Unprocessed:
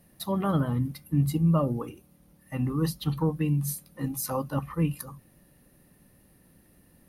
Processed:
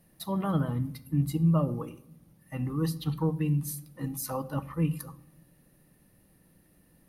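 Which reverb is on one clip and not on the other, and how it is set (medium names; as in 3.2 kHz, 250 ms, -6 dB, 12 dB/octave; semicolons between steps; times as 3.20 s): simulated room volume 2300 m³, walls furnished, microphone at 0.62 m; trim -3.5 dB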